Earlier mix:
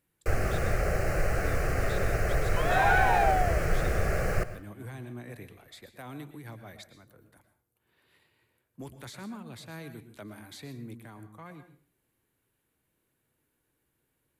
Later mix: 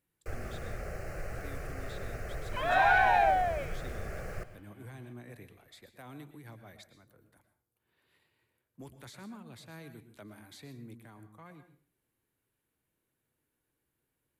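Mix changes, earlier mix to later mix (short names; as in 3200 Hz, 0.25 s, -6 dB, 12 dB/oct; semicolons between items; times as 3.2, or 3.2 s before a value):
speech -5.5 dB; first sound -12.0 dB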